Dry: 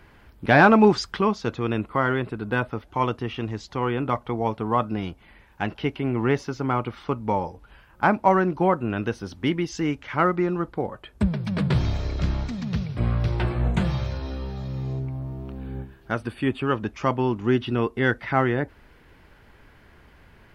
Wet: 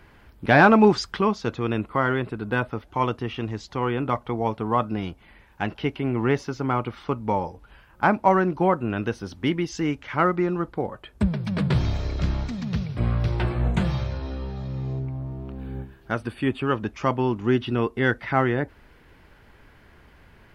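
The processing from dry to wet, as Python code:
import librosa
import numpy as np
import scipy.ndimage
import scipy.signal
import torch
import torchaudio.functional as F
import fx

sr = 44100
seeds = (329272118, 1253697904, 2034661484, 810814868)

y = fx.high_shelf(x, sr, hz=4500.0, db=-6.5, at=(14.03, 15.59))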